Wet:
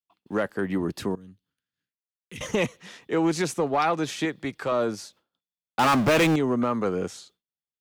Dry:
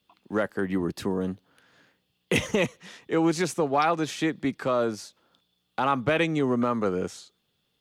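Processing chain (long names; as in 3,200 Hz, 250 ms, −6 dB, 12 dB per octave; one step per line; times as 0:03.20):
0:04.25–0:04.72: parametric band 220 Hz −9 dB 0.93 octaves
0:05.79–0:06.36: power curve on the samples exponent 0.5
downward expander −51 dBFS
0:01.15–0:02.41: guitar amp tone stack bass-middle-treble 6-0-2
soft clipping −14.5 dBFS, distortion −21 dB
level +1 dB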